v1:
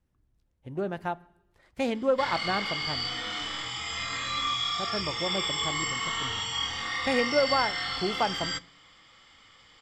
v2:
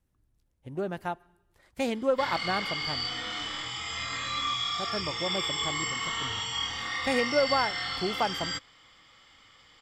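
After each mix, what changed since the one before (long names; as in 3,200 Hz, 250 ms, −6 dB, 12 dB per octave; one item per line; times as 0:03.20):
speech: add high-shelf EQ 8,200 Hz +12 dB
reverb: off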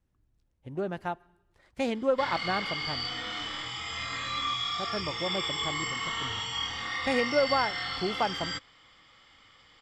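master: add high-frequency loss of the air 52 metres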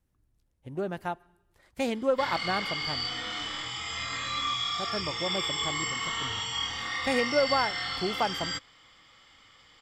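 master: remove high-frequency loss of the air 52 metres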